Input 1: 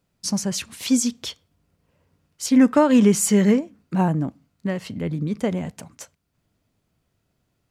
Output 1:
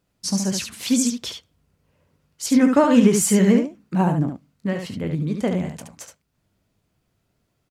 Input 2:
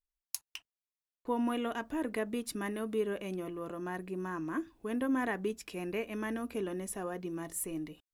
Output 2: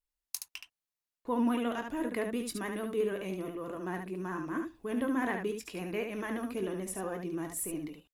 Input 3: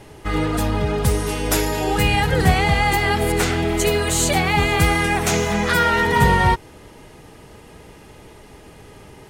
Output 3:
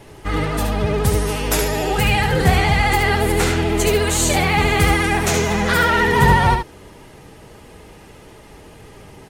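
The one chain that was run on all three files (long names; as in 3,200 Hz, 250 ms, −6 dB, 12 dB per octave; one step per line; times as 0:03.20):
pitch vibrato 14 Hz 58 cents
ambience of single reflections 21 ms −11.5 dB, 72 ms −6 dB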